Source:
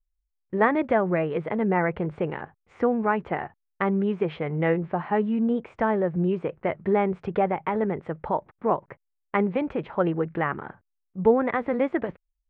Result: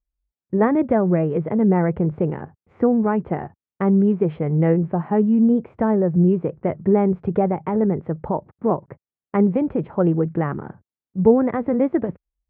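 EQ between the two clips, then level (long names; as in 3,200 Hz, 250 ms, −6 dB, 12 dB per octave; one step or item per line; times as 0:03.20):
high-pass filter 73 Hz
low-pass filter 1,000 Hz 6 dB per octave
low-shelf EQ 400 Hz +11.5 dB
0.0 dB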